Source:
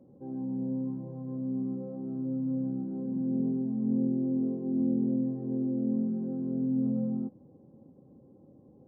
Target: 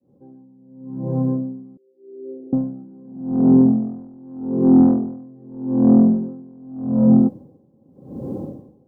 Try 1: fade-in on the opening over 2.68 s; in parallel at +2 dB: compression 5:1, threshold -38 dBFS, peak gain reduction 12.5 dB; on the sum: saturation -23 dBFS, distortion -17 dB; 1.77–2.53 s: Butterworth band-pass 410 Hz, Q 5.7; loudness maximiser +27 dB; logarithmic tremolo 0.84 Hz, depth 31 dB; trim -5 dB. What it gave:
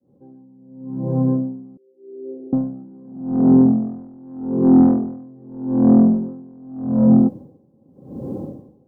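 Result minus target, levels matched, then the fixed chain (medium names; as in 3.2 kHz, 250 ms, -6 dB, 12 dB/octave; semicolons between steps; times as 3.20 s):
compression: peak gain reduction -8 dB
fade-in on the opening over 2.68 s; in parallel at +2 dB: compression 5:1, threshold -48 dBFS, peak gain reduction 20.5 dB; on the sum: saturation -23 dBFS, distortion -18 dB; 1.77–2.53 s: Butterworth band-pass 410 Hz, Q 5.7; loudness maximiser +27 dB; logarithmic tremolo 0.84 Hz, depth 31 dB; trim -5 dB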